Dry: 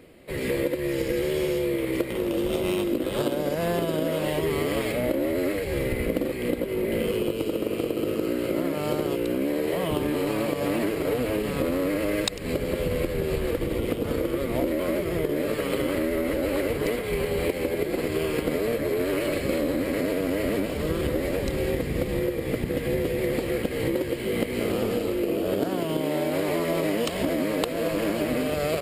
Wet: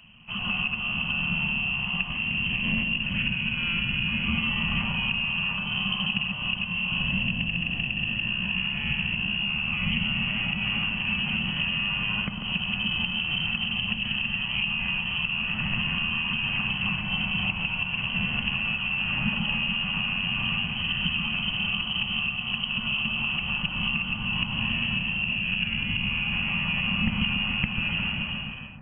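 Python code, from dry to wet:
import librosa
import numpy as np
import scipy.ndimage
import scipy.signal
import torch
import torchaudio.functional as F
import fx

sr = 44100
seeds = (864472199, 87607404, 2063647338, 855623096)

p1 = fx.fade_out_tail(x, sr, length_s=0.85)
p2 = fx.notch(p1, sr, hz=1000.0, q=16.0)
p3 = fx.comb_fb(p2, sr, f0_hz=950.0, decay_s=0.31, harmonics='all', damping=0.0, mix_pct=60)
p4 = p3 + fx.echo_wet_highpass(p3, sr, ms=144, feedback_pct=64, hz=2100.0, wet_db=-4.5, dry=0)
p5 = fx.freq_invert(p4, sr, carrier_hz=3100)
p6 = fx.low_shelf_res(p5, sr, hz=280.0, db=13.5, q=3.0)
y = p6 * 10.0 ** (5.0 / 20.0)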